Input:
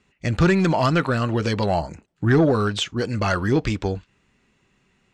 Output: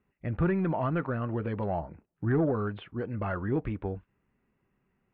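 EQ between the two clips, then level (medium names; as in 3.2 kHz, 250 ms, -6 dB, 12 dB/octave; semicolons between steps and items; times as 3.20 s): Gaussian low-pass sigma 4.2 samples; -9.0 dB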